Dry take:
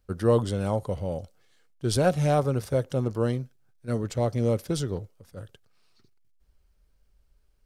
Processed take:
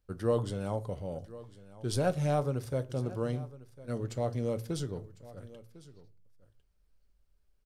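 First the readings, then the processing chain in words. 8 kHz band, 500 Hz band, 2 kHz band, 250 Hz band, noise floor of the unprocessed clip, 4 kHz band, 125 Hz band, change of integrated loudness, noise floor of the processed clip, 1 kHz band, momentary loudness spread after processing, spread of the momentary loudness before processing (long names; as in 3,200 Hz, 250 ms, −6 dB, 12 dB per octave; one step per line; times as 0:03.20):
−7.0 dB, −6.5 dB, −7.0 dB, −7.0 dB, −65 dBFS, −7.0 dB, −6.5 dB, −7.0 dB, −70 dBFS, −6.5 dB, 19 LU, 19 LU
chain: single-tap delay 1,052 ms −18.5 dB
rectangular room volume 160 cubic metres, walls furnished, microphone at 0.38 metres
level −7.5 dB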